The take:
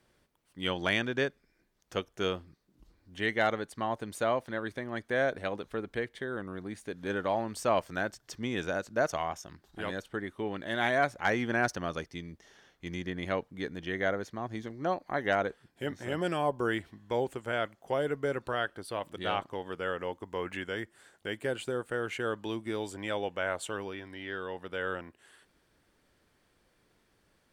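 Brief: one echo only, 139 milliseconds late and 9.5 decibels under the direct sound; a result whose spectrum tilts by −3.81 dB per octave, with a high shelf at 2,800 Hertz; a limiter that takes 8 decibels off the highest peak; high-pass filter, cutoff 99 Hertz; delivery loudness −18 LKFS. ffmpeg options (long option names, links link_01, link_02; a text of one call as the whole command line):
ffmpeg -i in.wav -af "highpass=99,highshelf=frequency=2800:gain=-4.5,alimiter=limit=-21.5dB:level=0:latency=1,aecho=1:1:139:0.335,volume=18dB" out.wav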